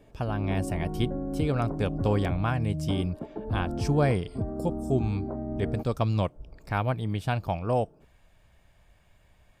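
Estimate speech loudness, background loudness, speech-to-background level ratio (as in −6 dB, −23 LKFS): −29.5 LKFS, −34.0 LKFS, 4.5 dB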